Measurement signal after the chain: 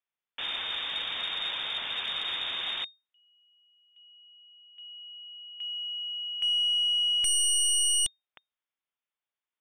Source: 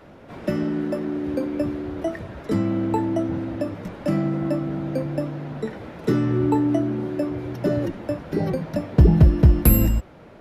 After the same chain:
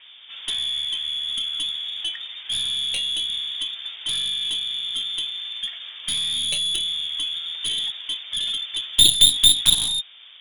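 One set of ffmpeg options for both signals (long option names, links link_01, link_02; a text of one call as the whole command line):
ffmpeg -i in.wav -af "lowpass=frequency=3100:width_type=q:width=0.5098,lowpass=frequency=3100:width_type=q:width=0.6013,lowpass=frequency=3100:width_type=q:width=0.9,lowpass=frequency=3100:width_type=q:width=2.563,afreqshift=-3700,aeval=exprs='0.794*(cos(1*acos(clip(val(0)/0.794,-1,1)))-cos(1*PI/2))+0.251*(cos(2*acos(clip(val(0)/0.794,-1,1)))-cos(2*PI/2))+0.282*(cos(7*acos(clip(val(0)/0.794,-1,1)))-cos(7*PI/2))':channel_layout=same,volume=-3.5dB" out.wav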